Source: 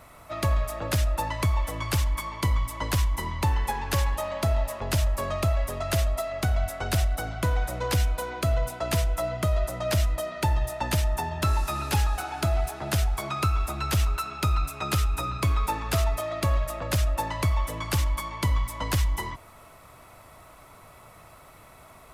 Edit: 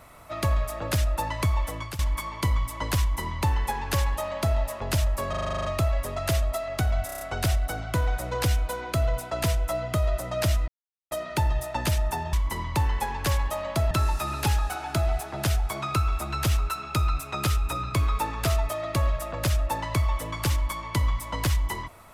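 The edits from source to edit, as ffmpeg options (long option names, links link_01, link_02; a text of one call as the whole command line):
ffmpeg -i in.wav -filter_complex "[0:a]asplit=19[link_01][link_02][link_03][link_04][link_05][link_06][link_07][link_08][link_09][link_10][link_11][link_12][link_13][link_14][link_15][link_16][link_17][link_18][link_19];[link_01]atrim=end=1.99,asetpts=PTS-STARTPTS,afade=type=out:start_time=1.62:duration=0.37:curve=qsin:silence=0.133352[link_20];[link_02]atrim=start=1.99:end=5.332,asetpts=PTS-STARTPTS,afade=type=in:duration=0.004:curve=hsin:silence=0.133352[link_21];[link_03]atrim=start=5.288:end=5.332[link_22];[link_04]atrim=start=5.288:end=5.332[link_23];[link_05]atrim=start=5.288:end=5.332[link_24];[link_06]atrim=start=5.288:end=5.332[link_25];[link_07]atrim=start=5.288:end=5.332[link_26];[link_08]atrim=start=5.288:end=5.332[link_27];[link_09]atrim=start=5.288:end=5.332[link_28];[link_10]atrim=start=5.288:end=5.332[link_29];[link_11]atrim=start=5.288:end=6.732[link_30];[link_12]atrim=start=6.698:end=6.732[link_31];[link_13]atrim=start=6.698:end=6.732[link_32];[link_14]atrim=start=6.698:end=6.732[link_33];[link_15]atrim=start=6.698:end=6.732[link_34];[link_16]atrim=start=6.698:end=10.17,asetpts=PTS-STARTPTS,afade=type=out:start_time=3.468:duration=0.004:curve=hsin,apad=pad_dur=0.43[link_35];[link_17]atrim=start=10.17:end=11.392,asetpts=PTS-STARTPTS,afade=type=in:duration=0.004:curve=hsin[link_36];[link_18]atrim=start=2.998:end=4.582[link_37];[link_19]atrim=start=11.388[link_38];[link_20][link_21]concat=n=2:v=0:a=1[link_39];[link_39][link_22]acrossfade=duration=0.004:curve1=hsin:curve2=hsin[link_40];[link_40][link_23]acrossfade=duration=0.004:curve1=hsin:curve2=hsin[link_41];[link_41][link_24]acrossfade=duration=0.004:curve1=hsin:curve2=hsin[link_42];[link_42][link_25]acrossfade=duration=0.004:curve1=hsin:curve2=hsin[link_43];[link_43][link_26]acrossfade=duration=0.004:curve1=hsin:curve2=hsin[link_44];[link_44][link_27]acrossfade=duration=0.004:curve1=hsin:curve2=hsin[link_45];[link_45][link_28]acrossfade=duration=0.004:curve1=hsin:curve2=hsin[link_46];[link_46][link_29]acrossfade=duration=0.004:curve1=hsin:curve2=hsin[link_47];[link_47][link_30]acrossfade=duration=0.004:curve1=hsin:curve2=hsin[link_48];[link_48][link_31]acrossfade=duration=0.004:curve1=hsin:curve2=hsin[link_49];[link_49][link_32]acrossfade=duration=0.004:curve1=hsin:curve2=hsin[link_50];[link_50][link_33]acrossfade=duration=0.004:curve1=hsin:curve2=hsin[link_51];[link_51][link_34]acrossfade=duration=0.004:curve1=hsin:curve2=hsin[link_52];[link_35][link_36]concat=n=2:v=0:a=1[link_53];[link_52][link_53]acrossfade=duration=0.004:curve1=hsin:curve2=hsin[link_54];[link_54][link_37]acrossfade=duration=0.004:curve1=hsin:curve2=hsin[link_55];[link_55][link_38]acrossfade=duration=0.004:curve1=hsin:curve2=hsin" out.wav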